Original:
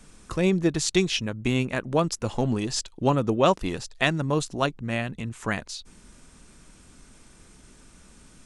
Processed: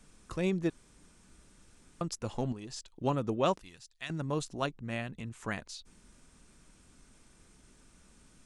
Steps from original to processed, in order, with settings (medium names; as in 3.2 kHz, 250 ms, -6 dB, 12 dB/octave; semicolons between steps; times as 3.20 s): 0.70–2.01 s: room tone; 2.52–3.04 s: compression 10:1, threshold -31 dBFS, peak gain reduction 9.5 dB; 3.61–4.10 s: amplifier tone stack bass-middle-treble 5-5-5; trim -8.5 dB